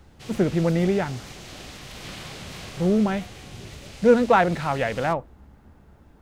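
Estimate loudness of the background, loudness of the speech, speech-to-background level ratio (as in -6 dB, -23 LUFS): -40.0 LUFS, -22.5 LUFS, 17.5 dB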